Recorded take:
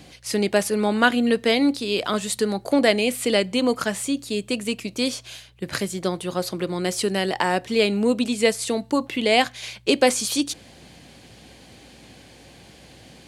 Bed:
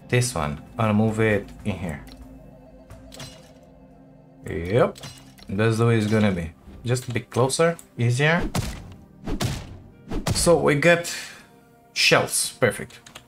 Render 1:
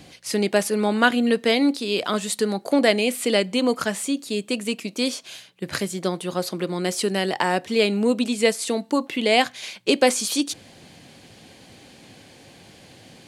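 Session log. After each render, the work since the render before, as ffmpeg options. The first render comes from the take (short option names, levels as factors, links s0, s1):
-af "bandreject=f=60:t=h:w=4,bandreject=f=120:t=h:w=4"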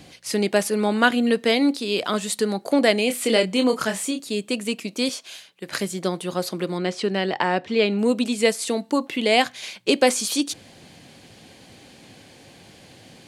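-filter_complex "[0:a]asettb=1/sr,asplit=3[s0][s1][s2];[s0]atrim=end=3.074[s3];[s1]atrim=start=3.07:end=4.2,asetpts=PTS-STARTPTS,afade=t=in:d=0.004:c=qsin,afade=t=out:st=1.126:d=0.004:c=qsin,asplit=2[s4][s5];[s5]adelay=27,volume=0.501[s6];[s4][s6]amix=inputs=2:normalize=0,atrim=end_sample=49833[s7];[s2]atrim=start=4.196[s8];[s3][s7]acrossfade=d=0.004:c1=hsin:c2=qsin[s9];[s9][s8]acrossfade=d=0.004:c1=qsin:c2=hsin,asettb=1/sr,asplit=3[s10][s11][s12];[s10]atrim=end=5.094[s13];[s11]atrim=start=5.09:end=5.8,asetpts=PTS-STARTPTS,afade=t=in:d=0.004:c=qsin,afade=t=out:st=0.706:d=0.004:c=qsin,highpass=f=410:p=1[s14];[s12]atrim=start=5.796[s15];[s13][s14]acrossfade=d=0.004:c1=hsin:c2=qsin[s16];[s16][s15]acrossfade=d=0.004:c1=qsin:c2=hsin,asettb=1/sr,asplit=3[s17][s18][s19];[s17]atrim=end=6.784[s20];[s18]atrim=start=6.78:end=7.99,asetpts=PTS-STARTPTS,afade=t=in:d=0.004:c=qsin,afade=t=out:st=1.206:d=0.004:c=qsin,lowpass=4000[s21];[s19]atrim=start=7.986[s22];[s20][s21]acrossfade=d=0.004:c1=hsin:c2=qsin[s23];[s23][s22]acrossfade=d=0.004:c1=qsin:c2=hsin"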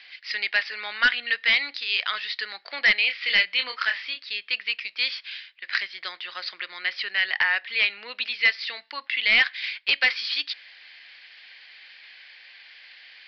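-af "highpass=f=1900:t=q:w=2.9,aresample=11025,asoftclip=type=hard:threshold=0.251,aresample=44100"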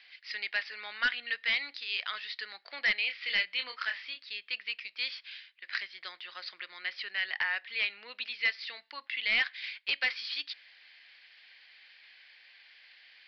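-af "volume=0.355"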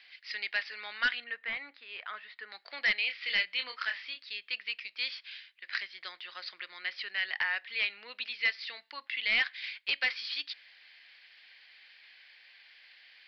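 -filter_complex "[0:a]asettb=1/sr,asplit=3[s0][s1][s2];[s0]atrim=end=1.244[s3];[s1]atrim=start=1.24:end=2.52,asetpts=PTS-STARTPTS,afade=t=in:d=0.004:c=qsin,afade=t=out:st=1.276:d=0.004:c=qsin,lowpass=1600[s4];[s2]atrim=start=2.516[s5];[s3][s4]acrossfade=d=0.004:c1=hsin:c2=qsin[s6];[s6][s5]acrossfade=d=0.004:c1=qsin:c2=hsin"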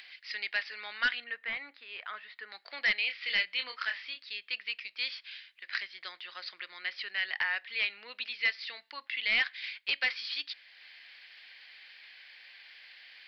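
-af "acompressor=mode=upward:threshold=0.00501:ratio=2.5"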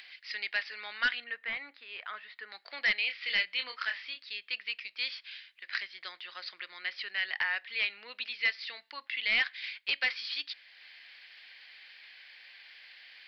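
-af anull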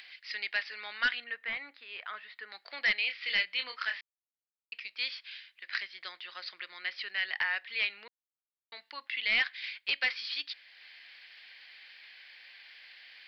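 -filter_complex "[0:a]asplit=5[s0][s1][s2][s3][s4];[s0]atrim=end=4.01,asetpts=PTS-STARTPTS,afade=t=out:st=4.006:d=0.004:c=hsin[s5];[s1]atrim=start=4.01:end=4.72,asetpts=PTS-STARTPTS,volume=0[s6];[s2]atrim=start=4.72:end=8.08,asetpts=PTS-STARTPTS,afade=t=in:d=0.004:c=hsin,afade=t=out:st=3.356:d=0.004:c=hsin[s7];[s3]atrim=start=8.08:end=8.72,asetpts=PTS-STARTPTS,volume=0[s8];[s4]atrim=start=8.72,asetpts=PTS-STARTPTS,afade=t=in:d=0.004:c=hsin[s9];[s5][s6][s7][s8][s9]concat=n=5:v=0:a=1"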